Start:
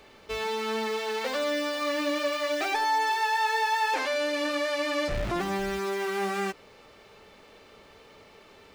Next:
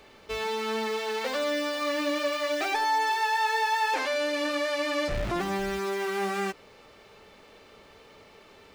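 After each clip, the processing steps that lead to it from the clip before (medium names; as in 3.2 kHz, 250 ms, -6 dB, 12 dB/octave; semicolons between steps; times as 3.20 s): no audible change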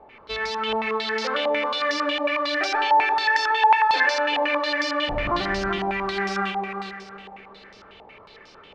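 multi-head delay 128 ms, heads first and third, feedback 46%, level -6.5 dB; step-sequenced low-pass 11 Hz 830–5300 Hz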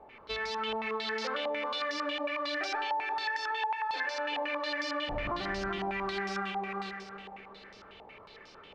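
compression 6:1, threshold -26 dBFS, peak gain reduction 13.5 dB; trim -4.5 dB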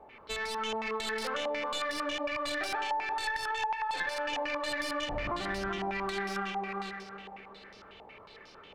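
tracing distortion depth 0.054 ms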